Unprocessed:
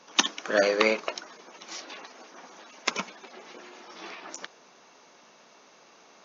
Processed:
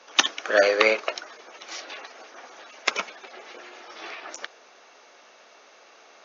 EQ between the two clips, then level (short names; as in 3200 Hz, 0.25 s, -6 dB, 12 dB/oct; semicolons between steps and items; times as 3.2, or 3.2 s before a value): HPF 490 Hz 12 dB/oct; bell 980 Hz -6.5 dB 0.4 oct; high shelf 5900 Hz -11 dB; +6.5 dB